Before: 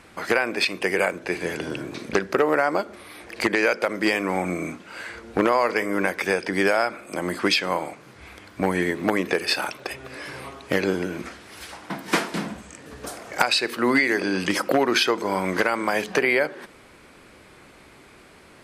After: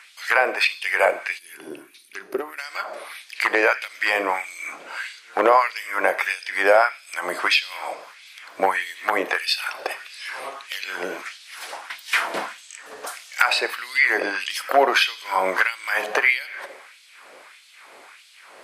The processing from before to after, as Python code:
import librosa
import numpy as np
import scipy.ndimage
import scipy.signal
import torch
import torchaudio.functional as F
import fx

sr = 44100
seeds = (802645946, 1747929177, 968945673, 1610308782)

y = fx.low_shelf(x, sr, hz=76.0, db=8.0)
y = fx.rev_double_slope(y, sr, seeds[0], early_s=0.78, late_s=2.5, knee_db=-18, drr_db=11.5)
y = fx.spec_box(y, sr, start_s=1.39, length_s=1.19, low_hz=420.0, high_hz=8900.0, gain_db=-15)
y = fx.filter_lfo_highpass(y, sr, shape='sine', hz=1.6, low_hz=550.0, high_hz=3700.0, q=1.7)
y = fx.dynamic_eq(y, sr, hz=6100.0, q=0.73, threshold_db=-39.0, ratio=4.0, max_db=-7)
y = y * 10.0 ** (3.0 / 20.0)